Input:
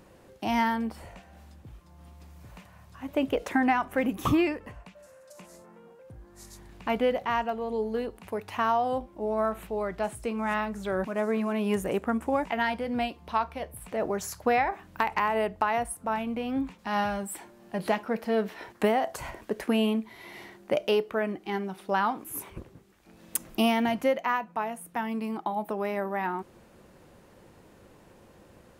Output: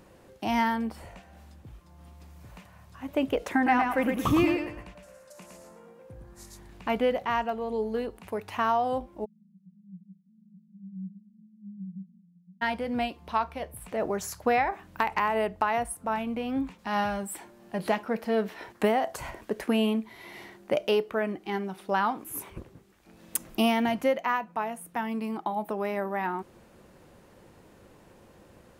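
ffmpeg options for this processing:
ffmpeg -i in.wav -filter_complex "[0:a]asettb=1/sr,asplit=3[link_01][link_02][link_03];[link_01]atrim=end=3.554[link_04];[link_02]atrim=start=3.55:end=6.46,asetpts=PTS-STARTPTS,afade=type=in:duration=0.004:curve=qsin,afade=type=out:start_time=2.906:duration=0.004:curve=qsin,aecho=1:1:111|222|333|444:0.631|0.177|0.0495|0.0139,atrim=end_sample=128331[link_05];[link_03]atrim=start=6.456[link_06];[link_04][link_05]acrossfade=duration=0.004:curve1=hsin:curve2=qsin[link_07];[link_07][link_06]acrossfade=duration=0.004:curve1=qsin:curve2=hsin,asplit=3[link_08][link_09][link_10];[link_08]afade=type=out:start_time=9.24:duration=0.02[link_11];[link_09]asuperpass=centerf=180:order=8:qfactor=5.8,afade=type=in:start_time=9.24:duration=0.02,afade=type=out:start_time=12.61:duration=0.02[link_12];[link_10]afade=type=in:start_time=12.61:duration=0.02[link_13];[link_11][link_12][link_13]amix=inputs=3:normalize=0" out.wav

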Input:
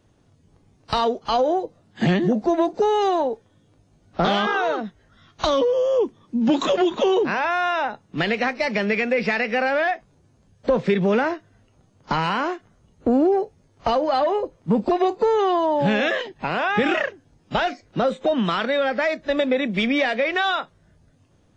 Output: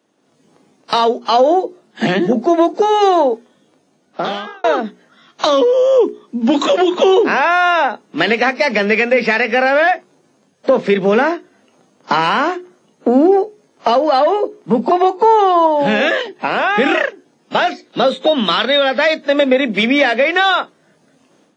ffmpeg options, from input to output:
ffmpeg -i in.wav -filter_complex "[0:a]asettb=1/sr,asplit=3[link_01][link_02][link_03];[link_01]atrim=end=14.844[link_04];[link_02]atrim=start=14.84:end=15.67,asetpts=PTS-STARTPTS,afade=type=in:duration=0.004:curve=qsin,afade=type=out:start_time=0.826:duration=0.004:curve=qsin,equalizer=frequency=890:width=3.7:gain=11[link_05];[link_03]atrim=start=15.666[link_06];[link_04][link_05]acrossfade=duration=0.004:curve1=hsin:curve2=qsin[link_07];[link_07][link_06]acrossfade=duration=0.004:curve1=qsin:curve2=hsin,asettb=1/sr,asplit=3[link_08][link_09][link_10];[link_08]atrim=end=17.714[link_11];[link_09]atrim=start=17.71:end=19.23,asetpts=PTS-STARTPTS,afade=type=in:duration=0.004:curve=qsin,afade=type=out:start_time=1.516:duration=0.004:curve=qsin,equalizer=frequency=3700:width=2.3:gain=10[link_12];[link_10]atrim=start=19.226[link_13];[link_11][link_12]acrossfade=duration=0.004:curve1=hsin:curve2=qsin[link_14];[link_14][link_13]acrossfade=duration=0.004:curve1=qsin:curve2=hsin,asplit=2[link_15][link_16];[link_15]atrim=end=4.64,asetpts=PTS-STARTPTS,afade=type=out:start_time=3.32:duration=1.32[link_17];[link_16]atrim=start=4.64,asetpts=PTS-STARTPTS,afade=type=in:duration=0.004:curve=hsin[link_18];[link_17][link_18]concat=n=2:v=0:a=1,dynaudnorm=framelen=210:gausssize=3:maxgain=11.5dB,highpass=frequency=210:width=0.5412,highpass=frequency=210:width=1.3066,bandreject=frequency=60:width_type=h:width=6,bandreject=frequency=120:width_type=h:width=6,bandreject=frequency=180:width_type=h:width=6,bandreject=frequency=240:width_type=h:width=6,bandreject=frequency=300:width_type=h:width=6,bandreject=frequency=360:width_type=h:width=6,bandreject=frequency=420:width_type=h:width=6" out.wav

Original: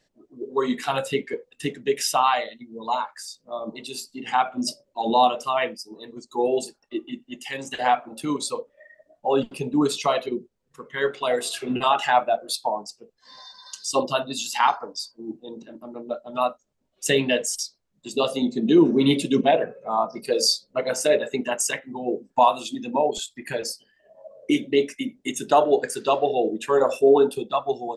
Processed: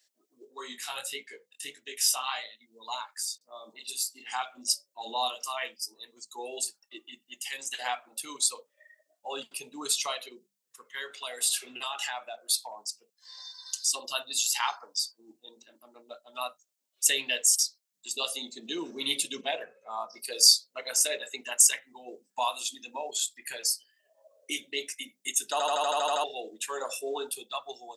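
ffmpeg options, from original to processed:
ffmpeg -i in.wav -filter_complex "[0:a]asplit=3[link_01][link_02][link_03];[link_01]afade=type=out:start_time=0.44:duration=0.02[link_04];[link_02]flanger=delay=18:depth=6.2:speed=1.6,afade=type=in:start_time=0.44:duration=0.02,afade=type=out:start_time=2.65:duration=0.02[link_05];[link_03]afade=type=in:start_time=2.65:duration=0.02[link_06];[link_04][link_05][link_06]amix=inputs=3:normalize=0,asettb=1/sr,asplit=3[link_07][link_08][link_09];[link_07]atrim=end=3.384[link_10];[link_08]atrim=start=3.38:end=5.94,asetpts=PTS-STARTPTS,afade=type=in:duration=0.004:curve=qsin,afade=type=out:start_time=2.556:duration=0.004:curve=qsin,acrossover=split=2900[link_11][link_12];[link_12]adelay=30[link_13];[link_11][link_13]amix=inputs=2:normalize=0,atrim=end_sample=112896[link_14];[link_09]atrim=start=5.936[link_15];[link_10][link_14]acrossfade=duration=0.004:curve1=hsin:curve2=qsin[link_16];[link_16][link_15]acrossfade=duration=0.004:curve1=qsin:curve2=hsin,asettb=1/sr,asplit=3[link_17][link_18][link_19];[link_17]atrim=end=10.144[link_20];[link_18]atrim=start=10.14:end=14.04,asetpts=PTS-STARTPTS,afade=type=in:duration=0.004:curve=qsin,afade=type=out:start_time=3.896:duration=0.004:curve=qsin,acompressor=threshold=-25dB:ratio=2:attack=3.2:release=140:knee=1:detection=peak[link_21];[link_19]atrim=start=14.036[link_22];[link_20][link_21]acrossfade=duration=0.004:curve1=hsin:curve2=qsin[link_23];[link_23][link_22]acrossfade=duration=0.004:curve1=qsin:curve2=hsin,asettb=1/sr,asplit=3[link_24][link_25][link_26];[link_24]atrim=end=19.274[link_27];[link_25]atrim=start=19.27:end=20.14,asetpts=PTS-STARTPTS,afade=type=in:duration=0.004:curve=qsin,afade=type=out:start_time=0.866:duration=0.004:curve=qsin,highshelf=frequency=8800:gain=-7[link_28];[link_26]atrim=start=20.136[link_29];[link_27][link_28]acrossfade=duration=0.004:curve1=hsin:curve2=qsin[link_30];[link_30][link_29]acrossfade=duration=0.004:curve1=qsin:curve2=hsin,asplit=10[link_31][link_32][link_33][link_34][link_35][link_36][link_37][link_38][link_39][link_40];[link_31]atrim=end=25.602[link_41];[link_32]atrim=start=25.518:end=25.602[link_42];[link_33]atrim=start=25.518:end=25.602[link_43];[link_34]atrim=start=25.518:end=25.602[link_44];[link_35]atrim=start=25.518:end=25.602[link_45];[link_36]atrim=start=25.518:end=25.602[link_46];[link_37]atrim=start=25.518:end=25.602[link_47];[link_38]atrim=start=25.518:end=25.602[link_48];[link_39]atrim=start=25.518:end=25.602[link_49];[link_40]atrim=start=26.238[link_50];[link_41][link_42]acrossfade=duration=0.004:curve1=hsin:curve2=hsin[link_51];[link_51][link_43]acrossfade=duration=0.004:curve1=hsin:curve2=hsin[link_52];[link_52][link_44]acrossfade=duration=0.004:curve1=hsin:curve2=hsin[link_53];[link_53][link_45]acrossfade=duration=0.004:curve1=hsin:curve2=hsin[link_54];[link_54][link_46]acrossfade=duration=0.004:curve1=hsin:curve2=hsin[link_55];[link_55][link_47]acrossfade=duration=0.004:curve1=hsin:curve2=hsin[link_56];[link_56][link_48]acrossfade=duration=0.004:curve1=hsin:curve2=hsin[link_57];[link_57][link_49]acrossfade=duration=0.004:curve1=hsin:curve2=hsin[link_58];[link_58][link_50]acrossfade=duration=0.004:curve1=hsin:curve2=hsin,highpass=100,aderivative,bandreject=frequency=50:width_type=h:width=6,bandreject=frequency=100:width_type=h:width=6,bandreject=frequency=150:width_type=h:width=6,bandreject=frequency=200:width_type=h:width=6,volume=5.5dB" out.wav

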